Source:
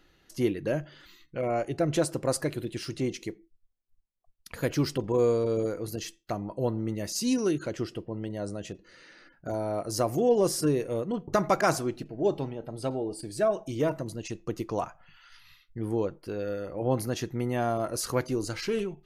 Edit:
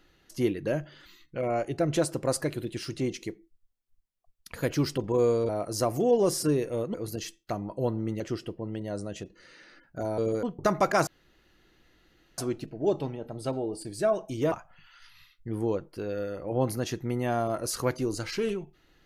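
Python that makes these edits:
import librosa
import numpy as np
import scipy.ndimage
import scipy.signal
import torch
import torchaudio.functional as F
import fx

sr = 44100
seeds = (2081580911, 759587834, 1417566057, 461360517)

y = fx.edit(x, sr, fx.swap(start_s=5.49, length_s=0.25, other_s=9.67, other_length_s=1.45),
    fx.cut(start_s=7.0, length_s=0.69),
    fx.insert_room_tone(at_s=11.76, length_s=1.31),
    fx.cut(start_s=13.9, length_s=0.92), tone=tone)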